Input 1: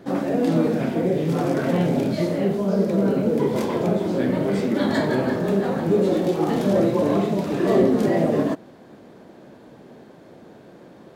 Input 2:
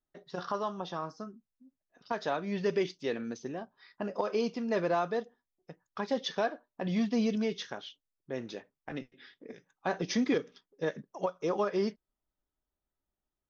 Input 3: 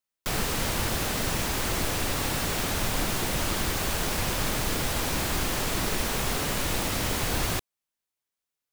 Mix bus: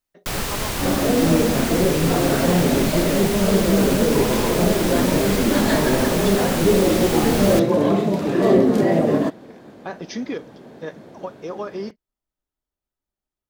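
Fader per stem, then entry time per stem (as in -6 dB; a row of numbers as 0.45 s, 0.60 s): +2.5 dB, 0.0 dB, +2.5 dB; 0.75 s, 0.00 s, 0.00 s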